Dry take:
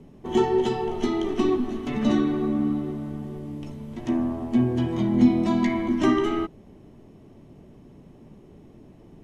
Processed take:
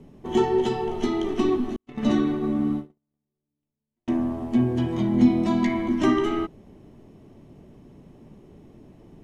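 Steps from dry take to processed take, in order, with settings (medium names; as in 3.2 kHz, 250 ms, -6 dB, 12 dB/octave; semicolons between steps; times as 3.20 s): 1.76–4.08 s: gate -25 dBFS, range -50 dB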